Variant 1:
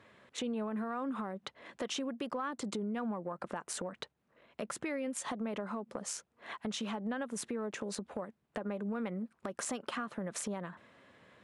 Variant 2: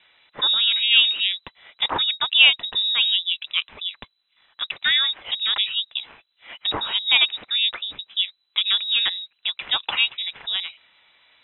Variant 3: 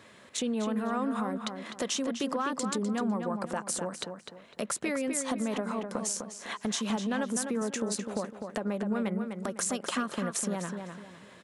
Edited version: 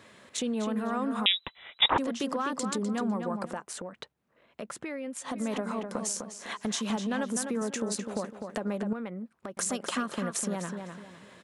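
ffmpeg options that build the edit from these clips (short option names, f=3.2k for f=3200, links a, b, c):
-filter_complex "[0:a]asplit=2[a][b];[2:a]asplit=4[c][d][e][f];[c]atrim=end=1.262[g];[1:a]atrim=start=1.258:end=1.982[h];[d]atrim=start=1.978:end=3.66[i];[a]atrim=start=3.42:end=5.46[j];[e]atrim=start=5.22:end=8.932[k];[b]atrim=start=8.928:end=9.572[l];[f]atrim=start=9.568[m];[g][h]acrossfade=d=0.004:c1=hsin:c2=hsin[n];[n][i]acrossfade=d=0.004:c1=hsin:c2=hsin[o];[o][j]acrossfade=d=0.24:c1=tri:c2=tri[p];[p][k]acrossfade=d=0.24:c1=tri:c2=tri[q];[q][l]acrossfade=d=0.004:c1=hsin:c2=hsin[r];[r][m]acrossfade=d=0.004:c1=hsin:c2=hsin"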